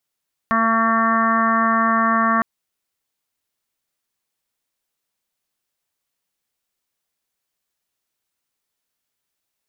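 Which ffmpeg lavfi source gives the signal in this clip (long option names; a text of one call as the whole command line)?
ffmpeg -f lavfi -i "aevalsrc='0.0891*sin(2*PI*226*t)+0.0126*sin(2*PI*452*t)+0.0562*sin(2*PI*678*t)+0.0266*sin(2*PI*904*t)+0.133*sin(2*PI*1130*t)+0.0596*sin(2*PI*1356*t)+0.0355*sin(2*PI*1582*t)+0.0631*sin(2*PI*1808*t)+0.0106*sin(2*PI*2034*t)':duration=1.91:sample_rate=44100" out.wav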